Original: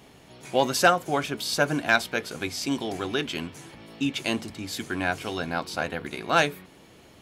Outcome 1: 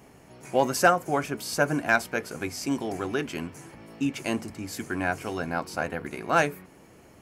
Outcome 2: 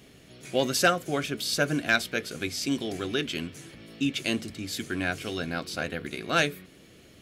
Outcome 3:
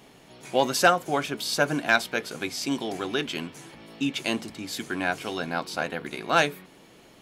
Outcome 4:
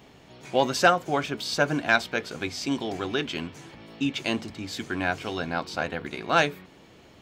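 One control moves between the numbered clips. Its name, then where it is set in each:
bell, frequency: 3600, 900, 81, 11000 Hz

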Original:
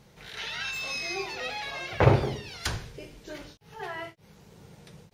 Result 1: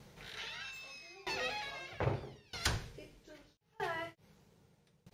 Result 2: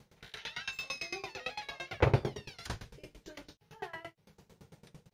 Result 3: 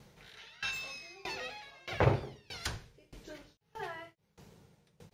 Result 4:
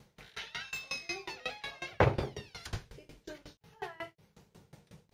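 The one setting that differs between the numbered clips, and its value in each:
dB-ramp tremolo, rate: 0.79, 8.9, 1.6, 5.5 Hz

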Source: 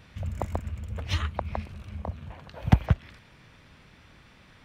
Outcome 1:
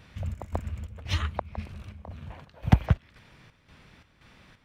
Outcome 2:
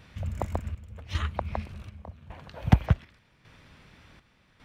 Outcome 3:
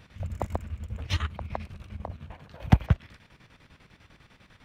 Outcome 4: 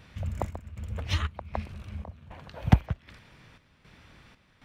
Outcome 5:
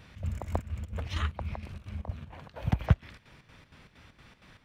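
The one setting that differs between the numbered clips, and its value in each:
chopper, rate: 1.9, 0.87, 10, 1.3, 4.3 Hz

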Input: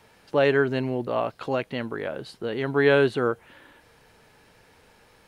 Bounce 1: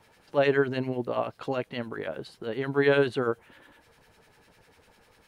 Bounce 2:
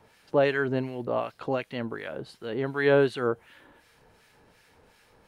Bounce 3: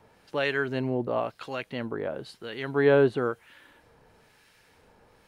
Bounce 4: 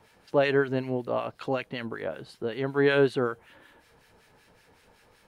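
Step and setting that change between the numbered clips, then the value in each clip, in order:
harmonic tremolo, rate: 10, 2.7, 1, 5.3 Hz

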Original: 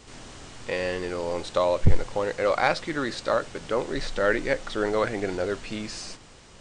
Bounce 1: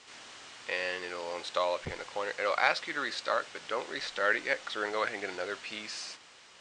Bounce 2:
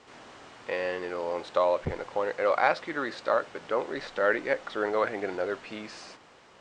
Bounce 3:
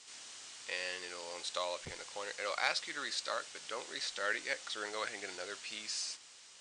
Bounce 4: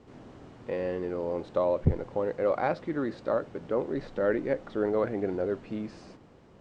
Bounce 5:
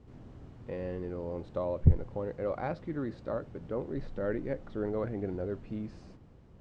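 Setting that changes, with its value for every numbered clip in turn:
band-pass, frequency: 2600, 1000, 7000, 260, 100 Hz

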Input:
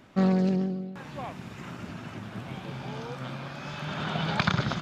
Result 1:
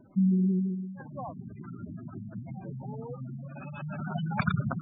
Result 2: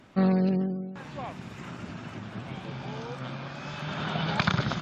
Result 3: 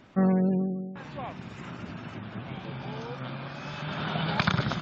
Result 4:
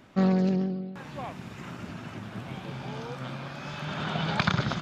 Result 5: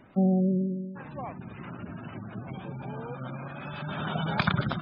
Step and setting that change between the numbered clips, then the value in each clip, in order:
spectral gate, under each frame's peak: -10, -45, -35, -60, -20 dB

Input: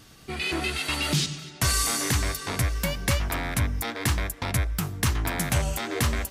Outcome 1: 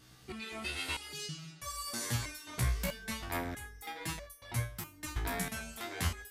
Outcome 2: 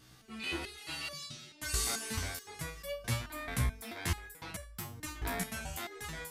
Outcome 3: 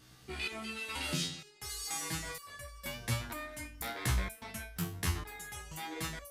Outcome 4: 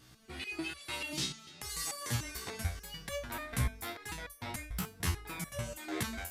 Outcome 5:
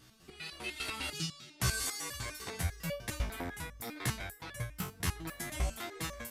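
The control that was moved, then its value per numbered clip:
stepped resonator, rate: 3.1, 4.6, 2.1, 6.8, 10 Hz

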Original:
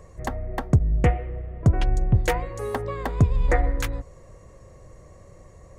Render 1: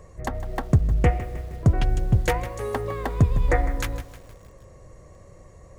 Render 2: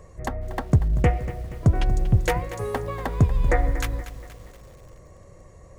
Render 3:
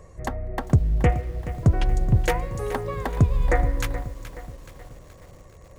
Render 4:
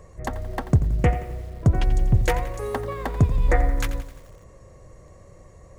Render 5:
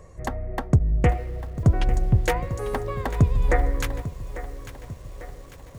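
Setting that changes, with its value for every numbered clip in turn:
lo-fi delay, time: 156, 237, 425, 87, 847 ms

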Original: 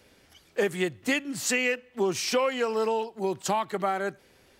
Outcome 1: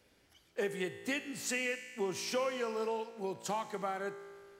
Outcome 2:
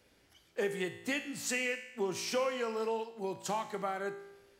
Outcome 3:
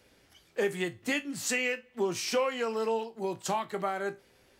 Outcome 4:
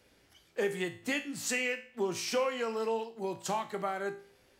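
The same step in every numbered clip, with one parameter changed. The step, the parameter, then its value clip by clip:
resonator, decay: 2.1, 0.95, 0.2, 0.45 s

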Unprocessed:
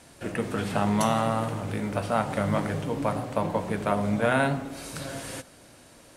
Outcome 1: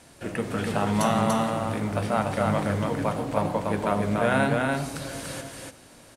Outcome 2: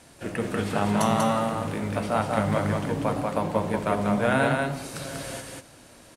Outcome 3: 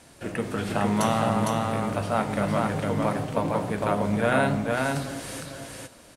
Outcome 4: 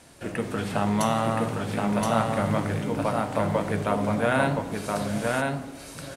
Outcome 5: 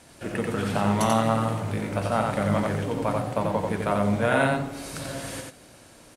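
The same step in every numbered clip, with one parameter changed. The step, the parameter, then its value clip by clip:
echo, time: 290, 191, 457, 1022, 89 ms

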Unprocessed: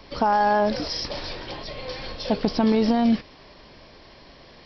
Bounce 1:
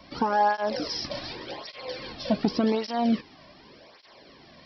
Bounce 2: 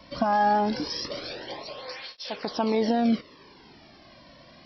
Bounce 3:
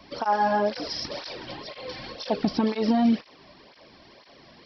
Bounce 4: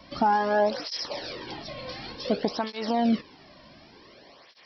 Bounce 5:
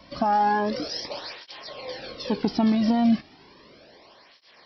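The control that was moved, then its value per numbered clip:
tape flanging out of phase, nulls at: 0.87, 0.23, 2, 0.55, 0.34 Hz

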